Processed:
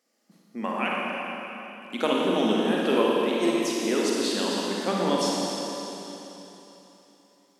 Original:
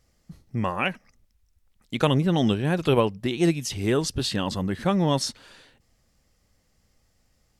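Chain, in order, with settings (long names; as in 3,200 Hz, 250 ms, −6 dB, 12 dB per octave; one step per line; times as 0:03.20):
elliptic high-pass filter 220 Hz, stop band 60 dB
convolution reverb RT60 3.5 s, pre-delay 38 ms, DRR −4 dB
level −3.5 dB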